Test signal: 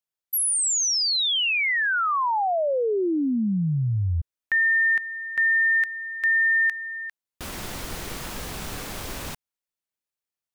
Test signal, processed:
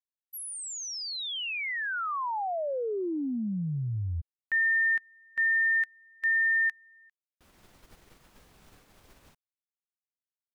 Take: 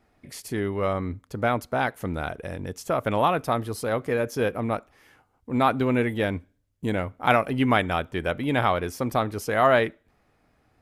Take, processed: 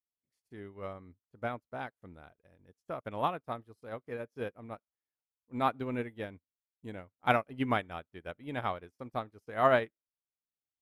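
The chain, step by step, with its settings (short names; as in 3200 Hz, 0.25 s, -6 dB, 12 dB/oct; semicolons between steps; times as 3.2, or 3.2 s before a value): high shelf 3800 Hz -3.5 dB; upward expander 2.5:1, over -44 dBFS; gain -4 dB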